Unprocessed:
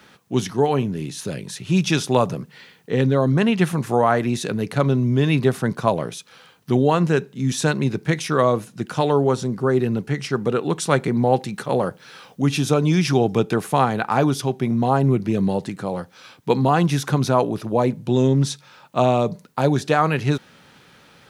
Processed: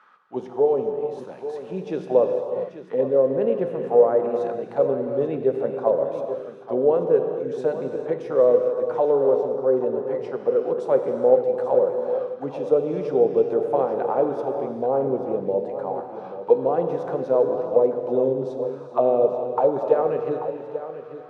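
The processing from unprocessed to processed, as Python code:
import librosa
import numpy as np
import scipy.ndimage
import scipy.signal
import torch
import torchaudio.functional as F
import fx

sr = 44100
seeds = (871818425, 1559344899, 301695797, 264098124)

y = fx.peak_eq(x, sr, hz=400.0, db=2.5, octaves=1.8)
y = fx.auto_wah(y, sr, base_hz=500.0, top_hz=1200.0, q=4.7, full_db=-14.0, direction='down')
y = y + 10.0 ** (-12.0 / 20.0) * np.pad(y, (int(837 * sr / 1000.0), 0))[:len(y)]
y = fx.rev_gated(y, sr, seeds[0], gate_ms=470, shape='flat', drr_db=4.5)
y = y * librosa.db_to_amplitude(3.5)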